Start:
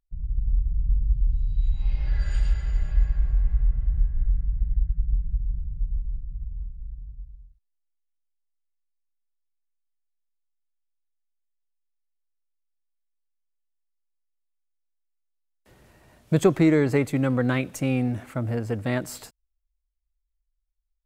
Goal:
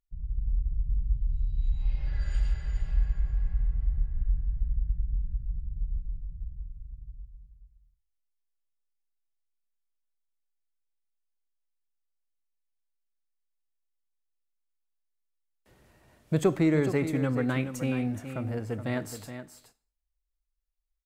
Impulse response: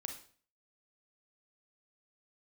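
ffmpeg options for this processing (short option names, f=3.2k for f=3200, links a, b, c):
-filter_complex "[0:a]aecho=1:1:422:0.316,asplit=2[a][b];[1:a]atrim=start_sample=2205[c];[b][c]afir=irnorm=-1:irlink=0,volume=-7.5dB[d];[a][d]amix=inputs=2:normalize=0,volume=-7.5dB"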